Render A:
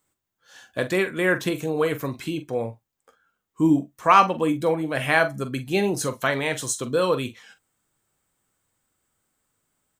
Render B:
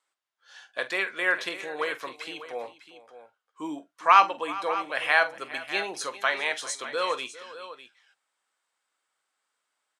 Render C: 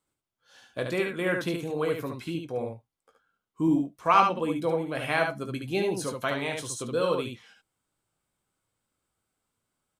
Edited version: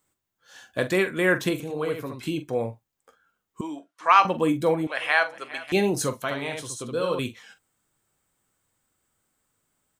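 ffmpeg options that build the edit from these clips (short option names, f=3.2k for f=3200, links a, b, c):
-filter_complex "[2:a]asplit=2[a][b];[1:a]asplit=2[c][d];[0:a]asplit=5[e][f][g][h][i];[e]atrim=end=1.602[j];[a]atrim=start=1.598:end=2.232[k];[f]atrim=start=2.228:end=3.612[l];[c]atrim=start=3.608:end=4.252[m];[g]atrim=start=4.248:end=4.872[n];[d]atrim=start=4.868:end=5.722[o];[h]atrim=start=5.718:end=6.222[p];[b]atrim=start=6.218:end=7.192[q];[i]atrim=start=7.188[r];[j][k]acrossfade=d=0.004:c1=hsin:c2=hsin[s];[s][l]acrossfade=d=0.004:c1=hsin:c2=hsin[t];[t][m]acrossfade=d=0.004:c1=hsin:c2=hsin[u];[u][n]acrossfade=d=0.004:c1=hsin:c2=hsin[v];[v][o]acrossfade=d=0.004:c1=hsin:c2=hsin[w];[w][p]acrossfade=d=0.004:c1=hsin:c2=hsin[x];[x][q]acrossfade=d=0.004:c1=hsin:c2=hsin[y];[y][r]acrossfade=d=0.004:c1=hsin:c2=hsin"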